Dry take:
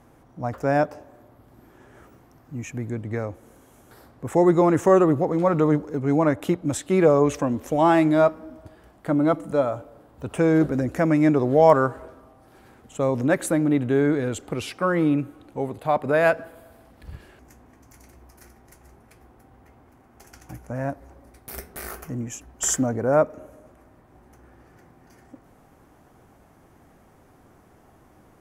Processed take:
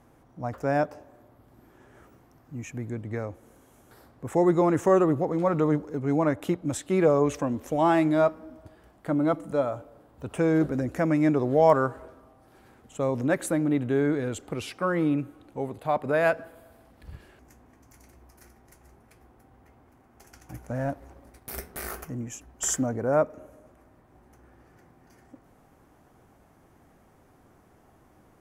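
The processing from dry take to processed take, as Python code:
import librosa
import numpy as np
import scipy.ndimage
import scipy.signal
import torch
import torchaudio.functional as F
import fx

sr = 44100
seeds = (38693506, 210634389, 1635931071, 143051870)

y = fx.leveller(x, sr, passes=1, at=(20.54, 22.05))
y = F.gain(torch.from_numpy(y), -4.0).numpy()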